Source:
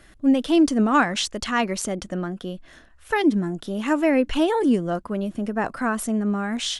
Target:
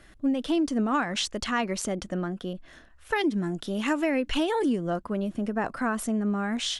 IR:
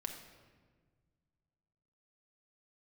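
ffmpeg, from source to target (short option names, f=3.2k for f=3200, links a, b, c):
-filter_complex "[0:a]highshelf=f=8.2k:g=-4.5,acompressor=threshold=-20dB:ratio=6,asettb=1/sr,asplit=3[a][b][c];[a]atrim=end=2.534[d];[b]atrim=start=2.53:end=4.73,asetpts=PTS-STARTPTS,afade=t=in:d=0.004:c=qsin,afade=t=out:st=2.196:d=0.004:c=qsin,adynamicequalizer=threshold=0.00891:dfrequency=1700:dqfactor=0.7:tfrequency=1700:tqfactor=0.7:attack=5:release=100:ratio=0.375:range=2.5:mode=boostabove:tftype=highshelf[e];[c]atrim=start=4.726[f];[d][e]acrossfade=d=0.004:c1=hsin:c2=qsin[g];[g][f]acrossfade=d=0.004:c1=qsin:c2=hsin,volume=-2dB"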